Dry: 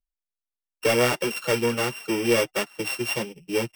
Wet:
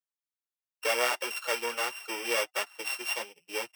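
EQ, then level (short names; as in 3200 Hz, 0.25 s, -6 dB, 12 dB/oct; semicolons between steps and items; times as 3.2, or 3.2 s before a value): Chebyshev high-pass 790 Hz, order 2; -3.0 dB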